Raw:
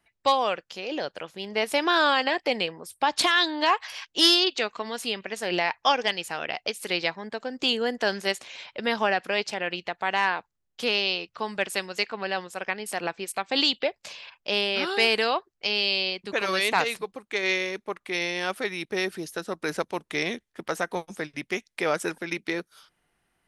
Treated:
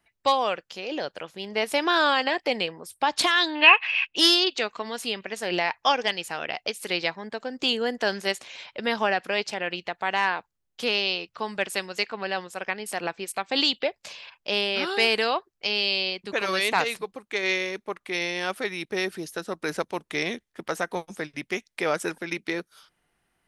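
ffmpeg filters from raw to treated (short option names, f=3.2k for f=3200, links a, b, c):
-filter_complex "[0:a]asettb=1/sr,asplit=3[a][b][c];[a]atrim=end=3.554[d];[b]atrim=start=3.55:end=4.16,asetpts=PTS-STARTPTS,afade=t=in:d=0.004:c=qsin,afade=t=out:st=0.606:d=0.004:c=qsin,lowpass=f=2.6k:t=q:w=15[e];[c]atrim=start=4.156[f];[d][e]acrossfade=d=0.004:c1=hsin:c2=qsin[g];[g][f]acrossfade=d=0.004:c1=qsin:c2=hsin"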